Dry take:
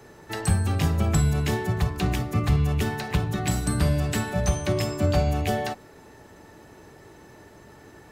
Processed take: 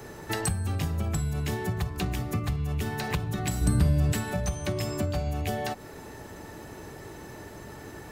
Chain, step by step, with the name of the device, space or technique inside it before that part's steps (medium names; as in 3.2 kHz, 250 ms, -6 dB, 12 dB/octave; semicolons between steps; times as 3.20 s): ASMR close-microphone chain (bass shelf 130 Hz +3 dB; compression 6:1, threshold -32 dBFS, peak gain reduction 17 dB; treble shelf 10 kHz +6.5 dB); 3.61–4.13 s: bass shelf 390 Hz +8 dB; trim +5 dB